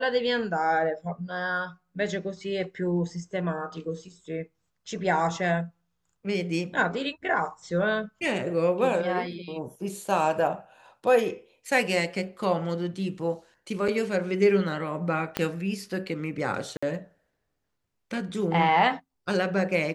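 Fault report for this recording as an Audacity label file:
13.880000	13.880000	gap 4.8 ms
15.370000	15.370000	pop -11 dBFS
16.770000	16.820000	gap 55 ms

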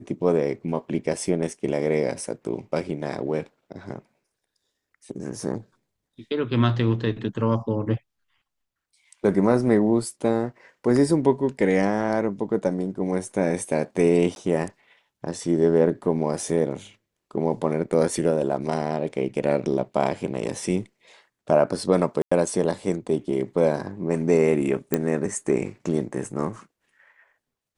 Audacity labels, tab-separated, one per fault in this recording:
14.350000	14.360000	gap 11 ms
22.220000	22.320000	gap 95 ms
24.940000	24.940000	pop -7 dBFS

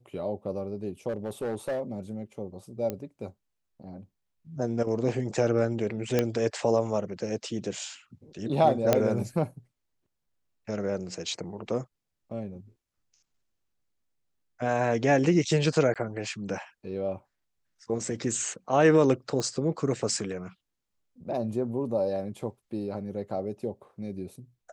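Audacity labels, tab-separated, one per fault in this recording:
1.080000	1.810000	clipped -26.5 dBFS
2.900000	2.900000	pop -18 dBFS
6.190000	6.190000	pop -10 dBFS
8.930000	8.930000	pop -7 dBFS
15.940000	15.960000	gap 17 ms
19.400000	19.400000	pop -18 dBFS

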